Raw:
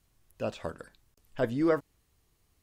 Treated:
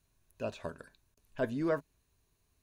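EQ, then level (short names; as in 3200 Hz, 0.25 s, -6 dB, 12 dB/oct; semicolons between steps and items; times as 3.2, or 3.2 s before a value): ripple EQ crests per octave 1.5, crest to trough 6 dB; -4.5 dB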